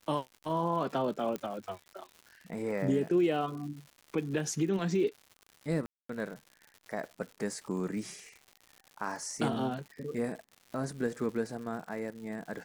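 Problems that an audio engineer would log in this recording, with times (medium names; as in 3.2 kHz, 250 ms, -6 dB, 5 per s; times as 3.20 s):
crackle 180 per s -42 dBFS
1.36 s: pop -22 dBFS
5.86–6.09 s: dropout 234 ms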